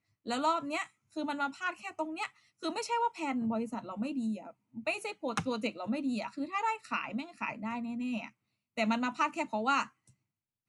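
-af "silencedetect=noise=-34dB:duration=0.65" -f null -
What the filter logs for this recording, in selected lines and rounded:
silence_start: 9.83
silence_end: 10.68 | silence_duration: 0.85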